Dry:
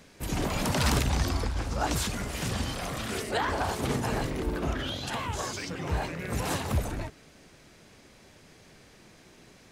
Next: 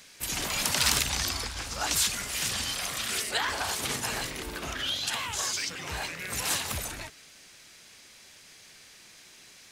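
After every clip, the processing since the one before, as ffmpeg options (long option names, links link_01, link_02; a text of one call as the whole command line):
ffmpeg -i in.wav -af "tiltshelf=frequency=1200:gain=-10,acontrast=88,volume=-8dB" out.wav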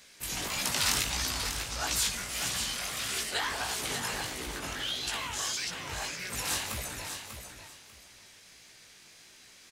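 ffmpeg -i in.wav -af "flanger=delay=15.5:depth=6.2:speed=1.6,aecho=1:1:593|1186|1779:0.398|0.0836|0.0176" out.wav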